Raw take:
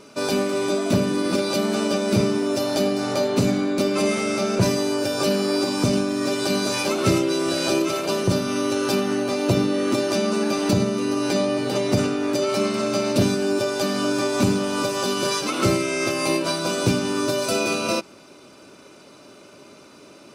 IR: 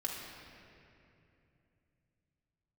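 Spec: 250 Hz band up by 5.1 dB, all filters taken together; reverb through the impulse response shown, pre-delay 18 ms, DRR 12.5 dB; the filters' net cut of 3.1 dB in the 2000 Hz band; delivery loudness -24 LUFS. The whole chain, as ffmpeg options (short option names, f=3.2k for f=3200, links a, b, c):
-filter_complex "[0:a]equalizer=f=250:t=o:g=6.5,equalizer=f=2k:t=o:g=-4.5,asplit=2[a][b];[1:a]atrim=start_sample=2205,adelay=18[c];[b][c]afir=irnorm=-1:irlink=0,volume=-15dB[d];[a][d]amix=inputs=2:normalize=0,volume=-4.5dB"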